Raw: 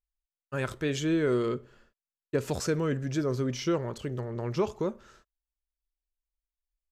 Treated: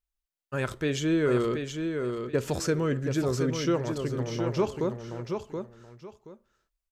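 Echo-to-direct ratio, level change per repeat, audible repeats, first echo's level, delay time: -6.0 dB, -13.0 dB, 2, -6.0 dB, 0.726 s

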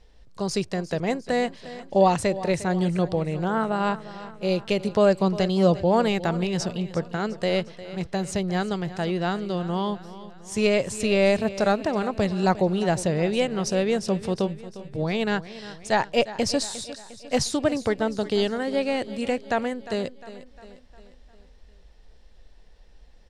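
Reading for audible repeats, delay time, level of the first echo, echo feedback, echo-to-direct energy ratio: 4, 0.354 s, -15.5 dB, 52%, -14.0 dB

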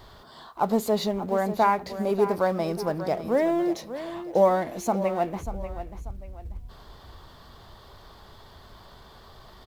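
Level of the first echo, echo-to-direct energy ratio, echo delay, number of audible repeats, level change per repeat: -12.0 dB, -11.5 dB, 0.589 s, 2, -9.5 dB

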